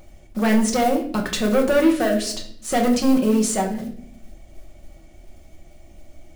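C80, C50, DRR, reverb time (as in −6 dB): 12.5 dB, 8.5 dB, 1.0 dB, 0.60 s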